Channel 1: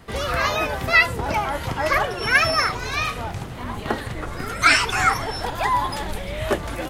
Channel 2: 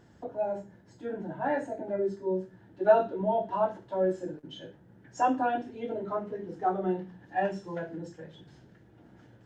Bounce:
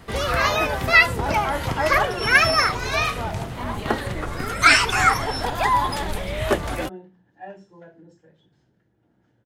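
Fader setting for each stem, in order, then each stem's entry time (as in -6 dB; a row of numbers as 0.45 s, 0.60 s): +1.5 dB, -10.0 dB; 0.00 s, 0.05 s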